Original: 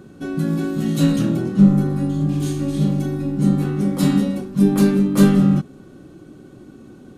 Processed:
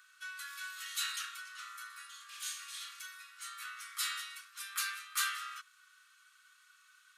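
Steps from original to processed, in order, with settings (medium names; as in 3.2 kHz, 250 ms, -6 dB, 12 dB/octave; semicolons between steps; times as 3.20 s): steep high-pass 1.2 kHz 72 dB/octave; trim -3.5 dB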